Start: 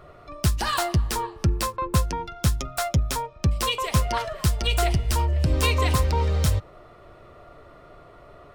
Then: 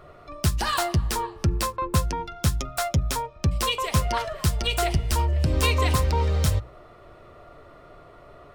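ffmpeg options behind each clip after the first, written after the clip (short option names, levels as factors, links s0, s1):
-af "bandreject=f=60:t=h:w=6,bandreject=f=120:t=h:w=6,bandreject=f=180:t=h:w=6"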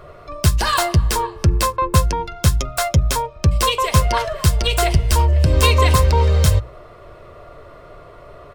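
-af "aecho=1:1:1.9:0.33,volume=2.11"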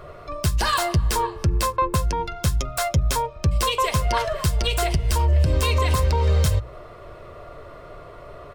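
-af "alimiter=limit=0.266:level=0:latency=1:release=177"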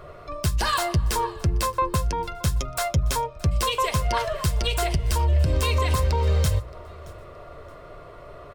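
-af "aecho=1:1:622|1244:0.0668|0.0187,volume=0.794"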